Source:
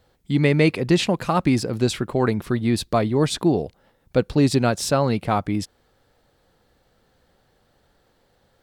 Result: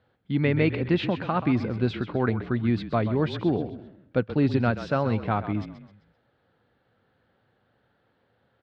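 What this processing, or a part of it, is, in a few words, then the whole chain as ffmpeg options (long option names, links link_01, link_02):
frequency-shifting delay pedal into a guitar cabinet: -filter_complex "[0:a]asplit=5[link_01][link_02][link_03][link_04][link_05];[link_02]adelay=130,afreqshift=-36,volume=-11.5dB[link_06];[link_03]adelay=260,afreqshift=-72,volume=-19.2dB[link_07];[link_04]adelay=390,afreqshift=-108,volume=-27dB[link_08];[link_05]adelay=520,afreqshift=-144,volume=-34.7dB[link_09];[link_01][link_06][link_07][link_08][link_09]amix=inputs=5:normalize=0,highpass=91,equalizer=frequency=110:width_type=q:width=4:gain=7,equalizer=frequency=240:width_type=q:width=4:gain=3,equalizer=frequency=1500:width_type=q:width=4:gain=5,lowpass=frequency=3500:width=0.5412,lowpass=frequency=3500:width=1.3066,volume=-6dB"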